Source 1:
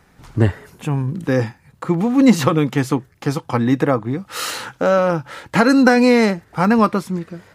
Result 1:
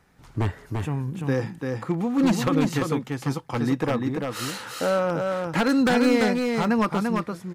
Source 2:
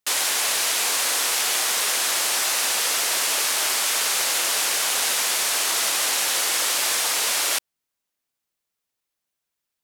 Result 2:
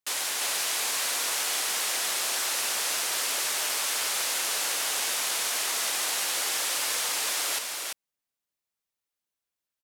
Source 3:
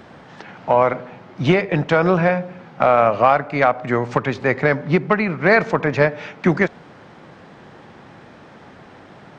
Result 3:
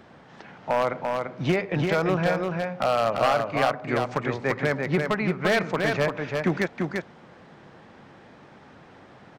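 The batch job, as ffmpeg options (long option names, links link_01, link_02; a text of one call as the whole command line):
ffmpeg -i in.wav -af "aeval=exprs='0.447*(abs(mod(val(0)/0.447+3,4)-2)-1)':channel_layout=same,aecho=1:1:342:0.631,volume=-7.5dB" out.wav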